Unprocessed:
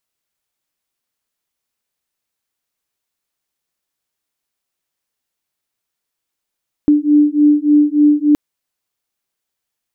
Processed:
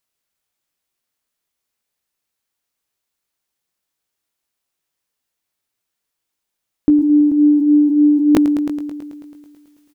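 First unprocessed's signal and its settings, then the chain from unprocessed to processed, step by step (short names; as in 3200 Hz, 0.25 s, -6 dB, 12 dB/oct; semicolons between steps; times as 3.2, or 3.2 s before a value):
beating tones 294 Hz, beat 3.4 Hz, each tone -11.5 dBFS 1.47 s
doubler 19 ms -10 dB; multi-head echo 0.109 s, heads all three, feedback 44%, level -23 dB; sustainer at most 30 dB/s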